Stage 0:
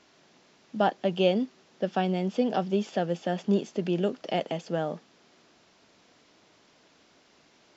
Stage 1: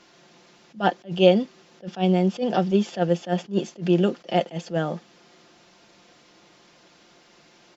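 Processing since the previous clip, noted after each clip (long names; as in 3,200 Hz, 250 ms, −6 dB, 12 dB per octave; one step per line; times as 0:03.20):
comb filter 5.7 ms, depth 52%
level that may rise only so fast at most 270 dB per second
level +5 dB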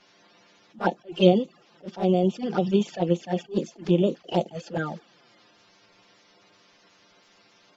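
spectral magnitudes quantised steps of 30 dB
flanger swept by the level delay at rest 10.9 ms, full sweep at −18.5 dBFS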